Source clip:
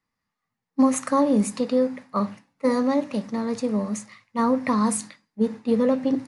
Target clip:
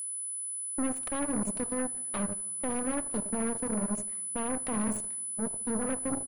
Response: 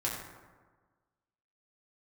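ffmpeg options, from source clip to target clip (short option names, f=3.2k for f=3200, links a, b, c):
-filter_complex "[0:a]equalizer=f=4.6k:t=o:w=2.6:g=-12.5,acrossover=split=160[a][b];[b]acompressor=threshold=-37dB:ratio=4[c];[a][c]amix=inputs=2:normalize=0,alimiter=level_in=4dB:limit=-24dB:level=0:latency=1:release=13,volume=-4dB,asplit=2[d][e];[e]adelay=75,lowpass=f=2.6k:p=1,volume=-10dB,asplit=2[f][g];[g]adelay=75,lowpass=f=2.6k:p=1,volume=0.48,asplit=2[h][i];[i]adelay=75,lowpass=f=2.6k:p=1,volume=0.48,asplit=2[j][k];[k]adelay=75,lowpass=f=2.6k:p=1,volume=0.48,asplit=2[l][m];[m]adelay=75,lowpass=f=2.6k:p=1,volume=0.48[n];[d][f][h][j][l][n]amix=inputs=6:normalize=0,aeval=exprs='0.0562*(cos(1*acos(clip(val(0)/0.0562,-1,1)))-cos(1*PI/2))+0.0126*(cos(2*acos(clip(val(0)/0.0562,-1,1)))-cos(2*PI/2))+0.0141*(cos(4*acos(clip(val(0)/0.0562,-1,1)))-cos(4*PI/2))+0.0112*(cos(7*acos(clip(val(0)/0.0562,-1,1)))-cos(7*PI/2))':c=same,asplit=2[o][p];[1:a]atrim=start_sample=2205[q];[p][q]afir=irnorm=-1:irlink=0,volume=-23dB[r];[o][r]amix=inputs=2:normalize=0,aeval=exprs='val(0)+0.02*sin(2*PI*10000*n/s)':c=same"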